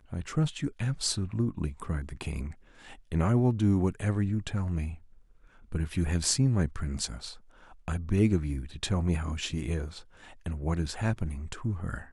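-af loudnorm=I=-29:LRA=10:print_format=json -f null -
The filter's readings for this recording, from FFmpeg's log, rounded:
"input_i" : "-30.8",
"input_tp" : "-11.3",
"input_lra" : "4.5",
"input_thresh" : "-41.5",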